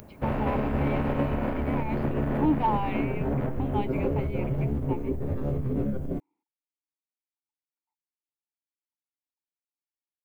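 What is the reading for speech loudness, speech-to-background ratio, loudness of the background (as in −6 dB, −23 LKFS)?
−34.0 LKFS, −4.5 dB, −29.5 LKFS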